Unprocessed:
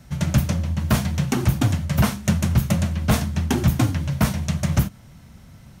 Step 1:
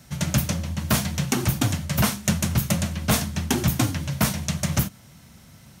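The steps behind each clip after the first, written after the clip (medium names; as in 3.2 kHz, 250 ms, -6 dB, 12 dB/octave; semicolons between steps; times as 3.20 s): high-pass 110 Hz 6 dB/octave; treble shelf 2.9 kHz +7.5 dB; trim -1.5 dB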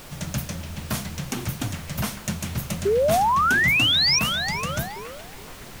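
added noise pink -35 dBFS; painted sound rise, 2.85–4.19 s, 380–5900 Hz -13 dBFS; repeats whose band climbs or falls 421 ms, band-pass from 2.8 kHz, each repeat -0.7 oct, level -7 dB; trim -6.5 dB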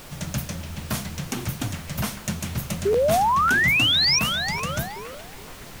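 crackling interface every 0.55 s, samples 512, repeat, from 0.72 s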